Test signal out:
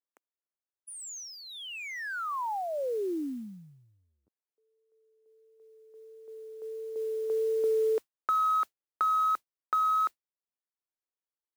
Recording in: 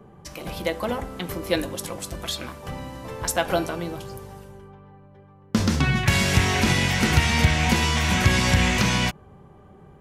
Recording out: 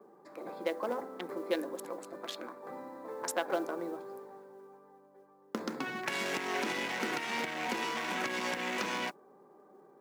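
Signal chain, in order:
adaptive Wiener filter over 15 samples
high-shelf EQ 2,600 Hz −6 dB
pitch vibrato 1.5 Hz 8 cents
downward compressor 3 to 1, threshold −22 dBFS
high-pass filter 290 Hz 24 dB per octave
parametric band 680 Hz −3 dB 0.33 octaves
noise that follows the level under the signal 28 dB
level −4 dB

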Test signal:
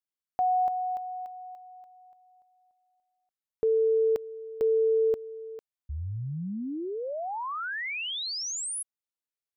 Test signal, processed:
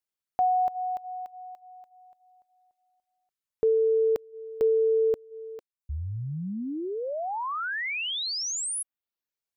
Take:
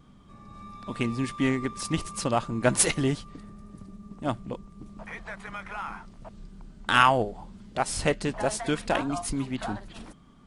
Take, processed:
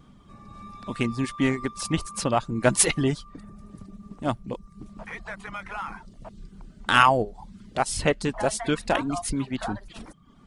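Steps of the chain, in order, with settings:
reverb reduction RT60 0.52 s
level +2.5 dB

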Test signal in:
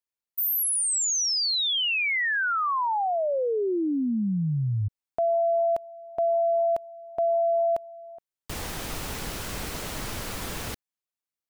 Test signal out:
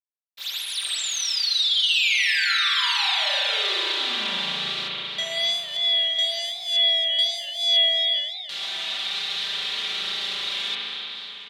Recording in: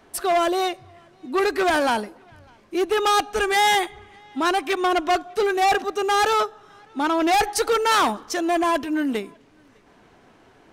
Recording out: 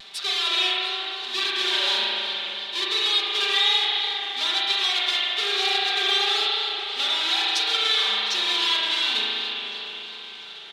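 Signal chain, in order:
each half-wave held at its own peak
high-pass filter 130 Hz
first difference
upward compression, threshold −37 dBFS
centre clipping without the shift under −40 dBFS
low-pass with resonance 3,700 Hz, resonance Q 5.8
downward compressor, threshold −26 dBFS
on a send: repeating echo 702 ms, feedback 52%, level −19.5 dB
on the sum: spring reverb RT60 3.4 s, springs 37 ms, chirp 40 ms, DRR −6 dB
pitch vibrato 1.1 Hz 35 cents
comb filter 5.1 ms, depth 93%
feedback echo with a swinging delay time 286 ms, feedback 44%, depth 188 cents, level −14 dB

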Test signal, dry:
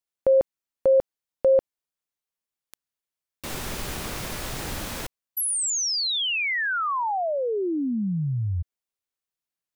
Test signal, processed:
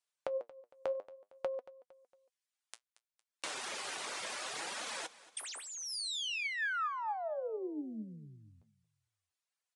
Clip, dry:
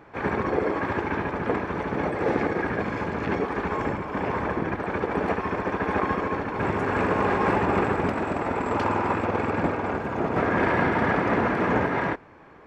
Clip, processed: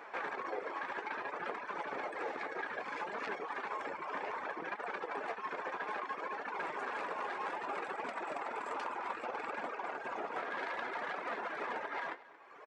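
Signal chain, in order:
stylus tracing distortion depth 0.067 ms
high-pass filter 610 Hz 12 dB per octave
reverb reduction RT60 0.89 s
downward compressor 6 to 1, threshold −41 dBFS
flanger 0.62 Hz, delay 3.9 ms, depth 8.2 ms, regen +60%
repeating echo 229 ms, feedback 42%, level −18.5 dB
downsampling to 22,050 Hz
level +7.5 dB

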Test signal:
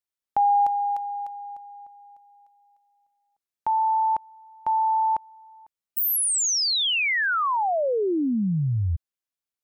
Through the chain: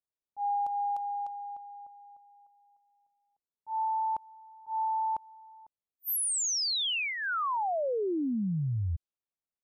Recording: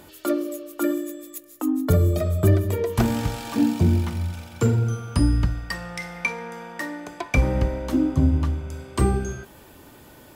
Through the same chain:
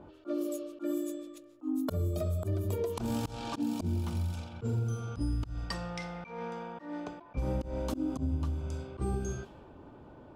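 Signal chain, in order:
volume swells 179 ms
parametric band 1,900 Hz −10.5 dB 0.57 octaves
downward compressor 6 to 1, threshold −26 dBFS
low-pass that shuts in the quiet parts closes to 1,100 Hz, open at −26.5 dBFS
level −2.5 dB

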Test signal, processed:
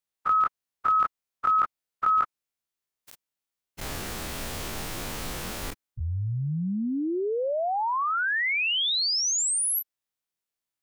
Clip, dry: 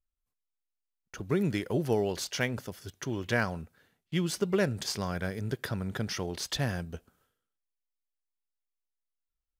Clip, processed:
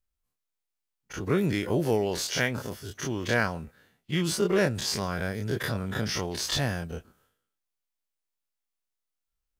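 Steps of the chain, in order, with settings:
every bin's largest magnitude spread in time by 60 ms

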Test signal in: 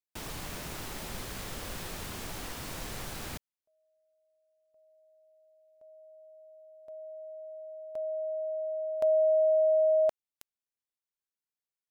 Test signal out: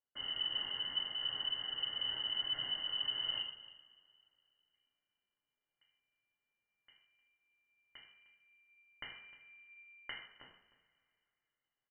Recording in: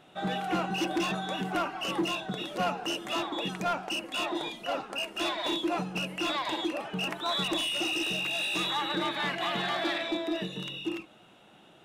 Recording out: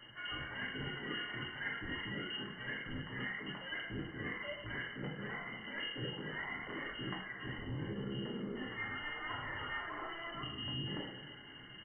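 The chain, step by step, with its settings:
Chebyshev band-stop filter 160–900 Hz, order 5
low-shelf EQ 140 Hz +8.5 dB
reversed playback
downward compressor 16 to 1, threshold −45 dBFS
reversed playback
flanger 1 Hz, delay 9 ms, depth 1.9 ms, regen −75%
in parallel at −9 dB: bit reduction 7 bits
on the sum: single-tap delay 306 ms −19.5 dB
coupled-rooms reverb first 0.65 s, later 2.8 s, from −21 dB, DRR −3.5 dB
voice inversion scrambler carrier 3,000 Hz
level +6.5 dB

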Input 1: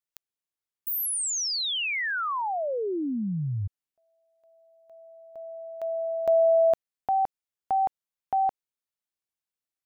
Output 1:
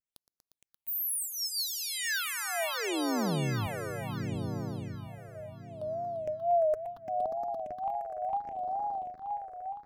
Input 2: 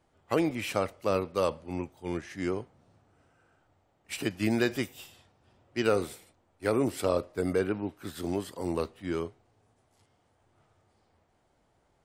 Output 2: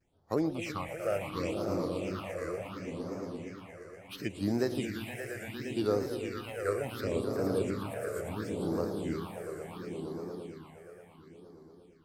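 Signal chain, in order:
echo that builds up and dies away 116 ms, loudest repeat 5, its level −8.5 dB
all-pass phaser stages 6, 0.71 Hz, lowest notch 240–2,900 Hz
tape wow and flutter 110 cents
level −4 dB

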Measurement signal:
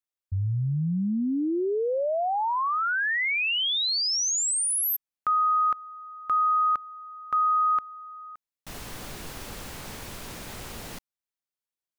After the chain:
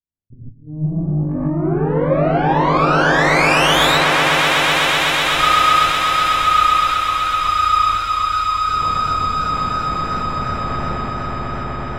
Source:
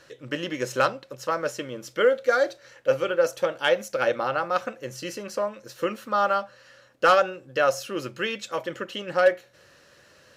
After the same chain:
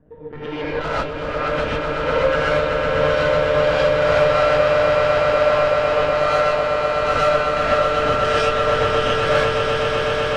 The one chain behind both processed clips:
one-pitch LPC vocoder at 8 kHz 150 Hz
in parallel at +2 dB: compressor whose output falls as the input rises −28 dBFS, ratio −0.5
on the sum: tube saturation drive 22 dB, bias 0.65
low-pass that shuts in the quiet parts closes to 310 Hz, open at −23 dBFS
on a send: echo that builds up and dies away 125 ms, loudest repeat 8, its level −8 dB
on the sum: reverb whose tail is shaped and stops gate 170 ms rising, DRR −8 dB
feedback echo with a swinging delay time 305 ms, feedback 60%, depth 158 cents, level −16 dB
level −1.5 dB

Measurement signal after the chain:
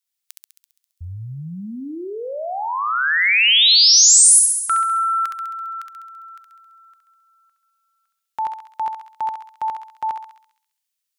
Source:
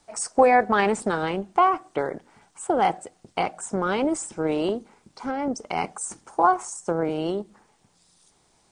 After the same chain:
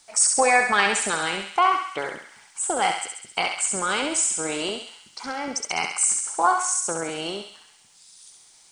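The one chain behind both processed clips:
tilt shelving filter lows −9.5 dB, about 1,300 Hz
feedback echo with a high-pass in the loop 67 ms, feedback 65%, high-pass 1,000 Hz, level −3.5 dB
level +1.5 dB

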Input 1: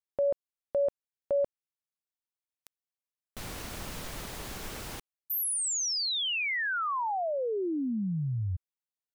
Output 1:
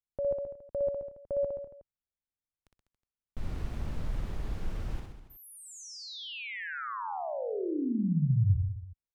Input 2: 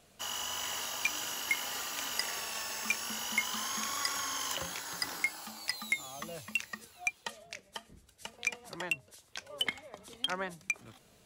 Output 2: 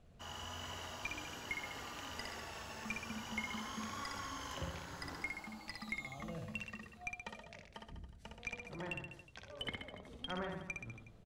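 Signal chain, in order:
RIAA equalisation playback
reverse bouncing-ball delay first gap 60 ms, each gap 1.1×, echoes 5
level −8 dB

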